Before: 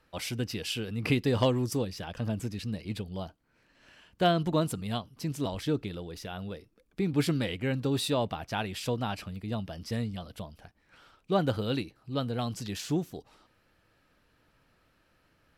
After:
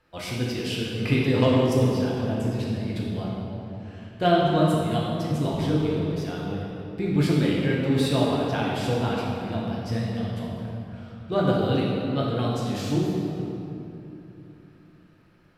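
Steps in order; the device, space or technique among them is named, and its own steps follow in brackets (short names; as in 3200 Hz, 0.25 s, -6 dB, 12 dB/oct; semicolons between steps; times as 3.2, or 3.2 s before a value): swimming-pool hall (reverb RT60 3.0 s, pre-delay 4 ms, DRR -5 dB; high shelf 5200 Hz -6 dB)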